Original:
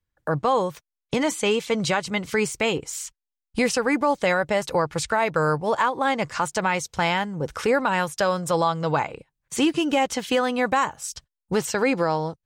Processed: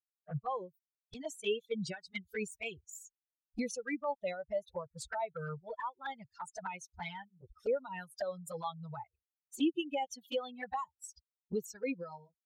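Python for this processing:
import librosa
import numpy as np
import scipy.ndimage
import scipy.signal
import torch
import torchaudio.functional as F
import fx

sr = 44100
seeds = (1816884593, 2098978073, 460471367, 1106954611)

y = fx.bin_expand(x, sr, power=3.0)
y = fx.env_flanger(y, sr, rest_ms=8.0, full_db=-26.5)
y = y * librosa.db_to_amplitude(-6.0)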